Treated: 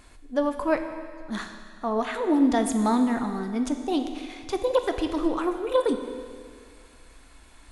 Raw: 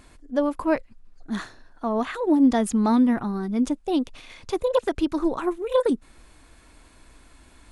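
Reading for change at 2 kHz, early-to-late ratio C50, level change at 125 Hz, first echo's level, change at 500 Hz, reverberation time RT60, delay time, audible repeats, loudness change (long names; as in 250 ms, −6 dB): +0.5 dB, 8.0 dB, can't be measured, no echo audible, −1.0 dB, 2.0 s, no echo audible, no echo audible, −2.0 dB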